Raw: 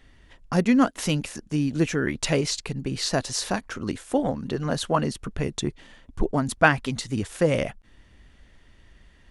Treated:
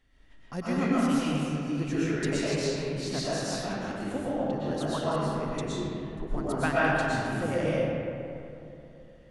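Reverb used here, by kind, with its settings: algorithmic reverb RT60 2.9 s, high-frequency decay 0.45×, pre-delay 80 ms, DRR -9 dB; trim -13.5 dB

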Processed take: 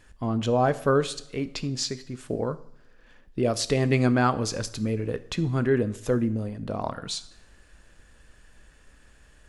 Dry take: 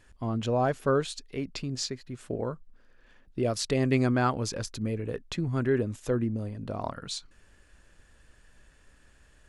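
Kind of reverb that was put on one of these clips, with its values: two-slope reverb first 0.64 s, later 3 s, from -27 dB, DRR 12.5 dB; trim +3.5 dB

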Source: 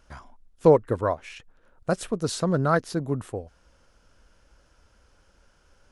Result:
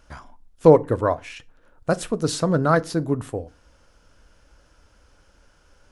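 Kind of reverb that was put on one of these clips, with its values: FDN reverb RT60 0.32 s, low-frequency decay 1.4×, high-frequency decay 0.8×, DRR 14 dB; trim +3.5 dB

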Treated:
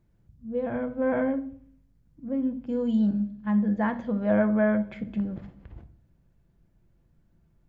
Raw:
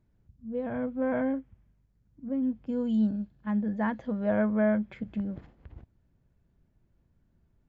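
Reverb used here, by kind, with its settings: simulated room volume 600 m³, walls furnished, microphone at 0.79 m; trim +2.5 dB

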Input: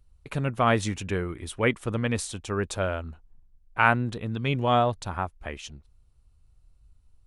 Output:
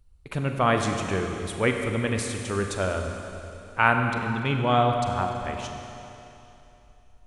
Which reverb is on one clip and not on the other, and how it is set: Schroeder reverb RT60 3 s, combs from 32 ms, DRR 3.5 dB

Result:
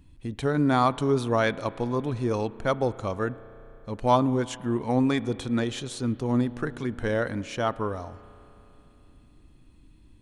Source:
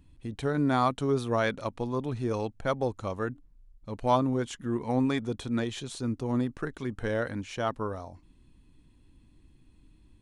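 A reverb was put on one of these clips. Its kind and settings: spring tank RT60 3.3 s, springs 33 ms, chirp 75 ms, DRR 17 dB; trim +3.5 dB

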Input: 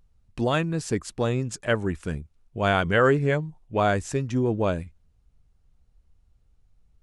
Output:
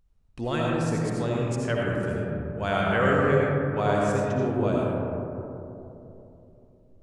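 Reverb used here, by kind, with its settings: algorithmic reverb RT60 3.2 s, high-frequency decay 0.25×, pre-delay 40 ms, DRR -4 dB; trim -6.5 dB

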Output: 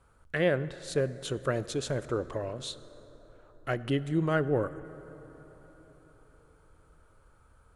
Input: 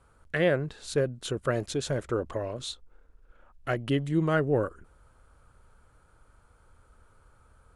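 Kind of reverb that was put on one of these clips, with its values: plate-style reverb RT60 4.7 s, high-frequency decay 0.4×, DRR 15 dB; trim -2 dB

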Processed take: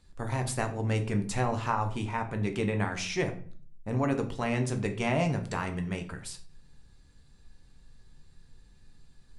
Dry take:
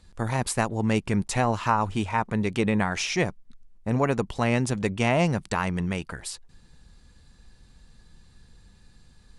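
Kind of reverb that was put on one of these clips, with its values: simulated room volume 43 m³, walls mixed, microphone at 0.36 m; trim -7 dB

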